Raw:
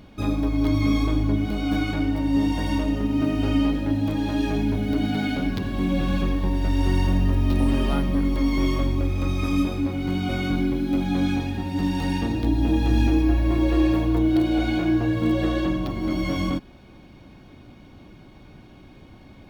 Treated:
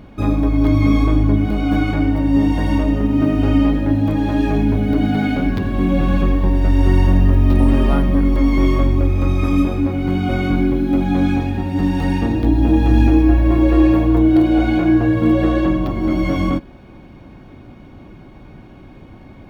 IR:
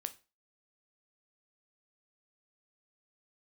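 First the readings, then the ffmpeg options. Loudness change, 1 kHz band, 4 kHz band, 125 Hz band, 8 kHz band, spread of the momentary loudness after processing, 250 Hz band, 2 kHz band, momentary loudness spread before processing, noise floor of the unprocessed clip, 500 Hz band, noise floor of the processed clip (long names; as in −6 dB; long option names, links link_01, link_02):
+7.0 dB, +6.5 dB, 0.0 dB, +7.5 dB, can't be measured, 6 LU, +7.0 dB, +4.5 dB, 5 LU, −48 dBFS, +7.5 dB, −41 dBFS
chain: -filter_complex "[0:a]asplit=2[link_01][link_02];[1:a]atrim=start_sample=2205,asetrate=83790,aresample=44100,lowpass=2600[link_03];[link_02][link_03]afir=irnorm=-1:irlink=0,volume=9.5dB[link_04];[link_01][link_04]amix=inputs=2:normalize=0"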